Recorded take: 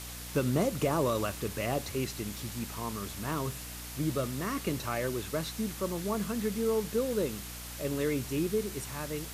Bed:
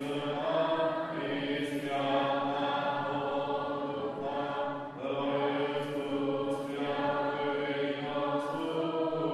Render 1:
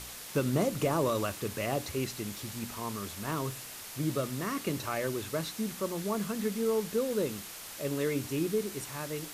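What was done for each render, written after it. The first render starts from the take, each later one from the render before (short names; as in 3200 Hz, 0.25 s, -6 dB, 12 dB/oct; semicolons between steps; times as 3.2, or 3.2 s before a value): de-hum 60 Hz, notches 5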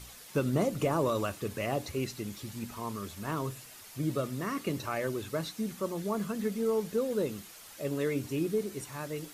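denoiser 8 dB, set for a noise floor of -45 dBFS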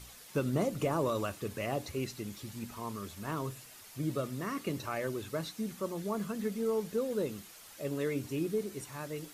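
gain -2.5 dB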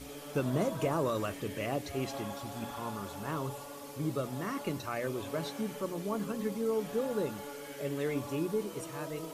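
add bed -12.5 dB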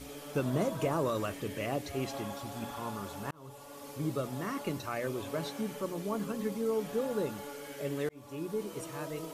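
3.31–3.89 fade in; 8.09–8.96 fade in equal-power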